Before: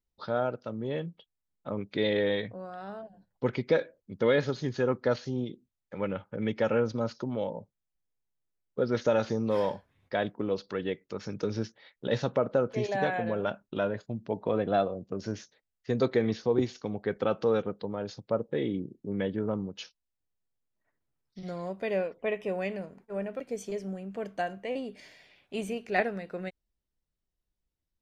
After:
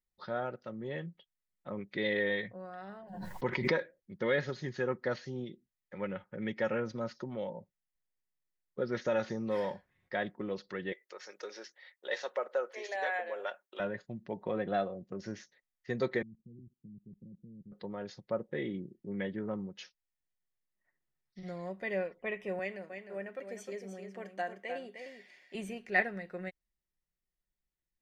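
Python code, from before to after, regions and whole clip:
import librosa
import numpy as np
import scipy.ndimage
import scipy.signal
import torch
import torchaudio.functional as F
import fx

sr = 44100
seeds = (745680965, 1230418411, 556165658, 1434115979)

y = fx.chain(x, sr, fx.peak_eq(hz=980.0, db=12.0, octaves=0.23),
    fx.pre_swell(db_per_s=55.0), at=(3.02, 3.81))
y = fx.chain(y, sr, fx.highpass(hz=460.0, slope=24),
    fx.high_shelf(hz=7600.0, db=9.5), at=(10.92, 13.8))
y = fx.chain(y, sr, fx.cheby2_lowpass(hz=1000.0, order=4, stop_db=70),
    fx.level_steps(step_db=22), at=(16.22, 17.72))
y = fx.chain(y, sr, fx.highpass(hz=260.0, slope=12),
    fx.echo_single(ms=306, db=-7.5), at=(22.59, 25.55))
y = fx.peak_eq(y, sr, hz=1900.0, db=10.0, octaves=0.37)
y = y + 0.38 * np.pad(y, (int(5.5 * sr / 1000.0), 0))[:len(y)]
y = y * librosa.db_to_amplitude(-7.0)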